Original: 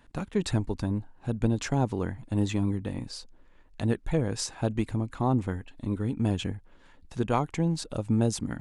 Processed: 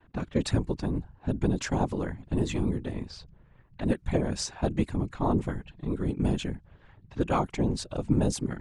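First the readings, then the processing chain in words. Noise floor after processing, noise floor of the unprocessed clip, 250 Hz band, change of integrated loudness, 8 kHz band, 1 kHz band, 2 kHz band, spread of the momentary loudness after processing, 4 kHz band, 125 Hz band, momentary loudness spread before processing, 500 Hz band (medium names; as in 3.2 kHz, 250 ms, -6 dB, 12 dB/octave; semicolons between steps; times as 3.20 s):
-59 dBFS, -56 dBFS, 0.0 dB, -0.5 dB, -0.5 dB, 0.0 dB, 0.0 dB, 9 LU, -0.5 dB, -1.5 dB, 9 LU, +0.5 dB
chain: level-controlled noise filter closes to 2.4 kHz, open at -23 dBFS; gate with hold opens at -52 dBFS; whisper effect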